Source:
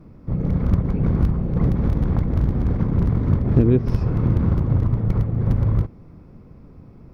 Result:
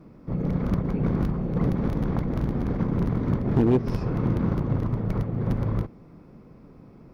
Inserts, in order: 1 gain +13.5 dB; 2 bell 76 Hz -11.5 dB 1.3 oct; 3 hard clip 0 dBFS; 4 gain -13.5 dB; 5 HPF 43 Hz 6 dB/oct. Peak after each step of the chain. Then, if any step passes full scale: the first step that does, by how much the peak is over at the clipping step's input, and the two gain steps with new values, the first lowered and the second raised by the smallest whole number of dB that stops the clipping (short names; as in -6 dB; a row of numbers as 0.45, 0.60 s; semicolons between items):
+7.0, +8.0, 0.0, -13.5, -10.5 dBFS; step 1, 8.0 dB; step 1 +5.5 dB, step 4 -5.5 dB